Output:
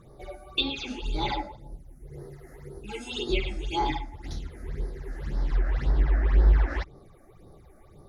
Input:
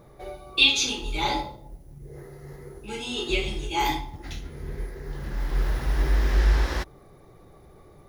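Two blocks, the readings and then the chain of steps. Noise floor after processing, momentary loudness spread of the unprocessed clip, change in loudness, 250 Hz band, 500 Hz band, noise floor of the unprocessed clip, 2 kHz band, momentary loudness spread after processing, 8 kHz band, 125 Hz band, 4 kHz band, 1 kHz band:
-53 dBFS, 23 LU, -3.5 dB, -1.0 dB, -2.0 dB, -52 dBFS, -8.0 dB, 21 LU, -16.5 dB, +0.5 dB, -8.5 dB, -3.0 dB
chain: low-pass that closes with the level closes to 2 kHz, closed at -18 dBFS; phase shifter stages 8, 1.9 Hz, lowest notch 120–2700 Hz

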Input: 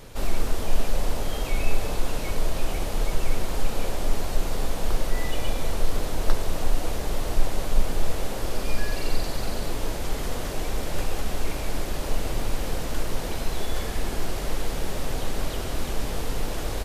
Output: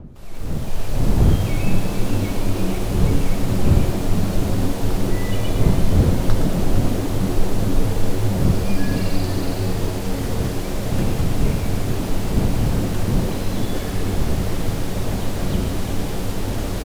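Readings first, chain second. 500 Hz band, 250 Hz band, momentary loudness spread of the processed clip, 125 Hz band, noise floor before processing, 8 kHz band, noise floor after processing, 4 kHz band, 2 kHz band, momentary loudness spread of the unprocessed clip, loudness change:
+6.0 dB, +13.5 dB, 7 LU, +13.0 dB, -30 dBFS, +2.0 dB, -25 dBFS, +2.0 dB, +2.5 dB, 2 LU, +8.5 dB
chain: fade-in on the opening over 1.11 s; wind noise 150 Hz -25 dBFS; on a send: frequency-shifting echo 457 ms, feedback 64%, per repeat +89 Hz, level -9.5 dB; on the sum: bit-crushed delay 116 ms, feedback 35%, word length 6-bit, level -10.5 dB; trim +1 dB

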